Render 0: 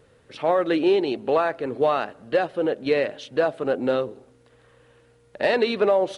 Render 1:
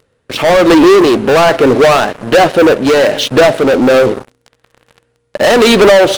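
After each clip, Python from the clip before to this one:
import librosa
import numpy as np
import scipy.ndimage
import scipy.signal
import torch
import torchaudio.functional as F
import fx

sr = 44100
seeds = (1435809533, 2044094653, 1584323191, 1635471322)

y = fx.leveller(x, sr, passes=5)
y = y * (1.0 - 0.3 / 2.0 + 0.3 / 2.0 * np.cos(2.0 * np.pi * 1.2 * (np.arange(len(y)) / sr)))
y = y * 10.0 ** (7.5 / 20.0)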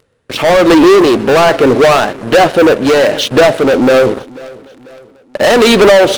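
y = fx.echo_feedback(x, sr, ms=492, feedback_pct=46, wet_db=-22)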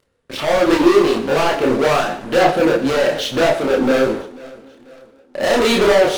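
y = fx.chorus_voices(x, sr, voices=4, hz=1.5, base_ms=29, depth_ms=3.0, mix_pct=50)
y = fx.rev_gated(y, sr, seeds[0], gate_ms=240, shape='falling', drr_db=7.5)
y = y * 10.0 ** (-5.0 / 20.0)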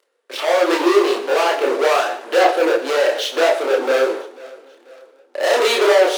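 y = scipy.signal.sosfilt(scipy.signal.butter(6, 360.0, 'highpass', fs=sr, output='sos'), x)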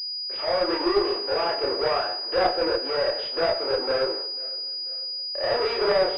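y = fx.cheby_harmonics(x, sr, harmonics=(2,), levels_db=(-12,), full_scale_db=-1.5)
y = fx.pwm(y, sr, carrier_hz=4900.0)
y = y * 10.0 ** (-8.5 / 20.0)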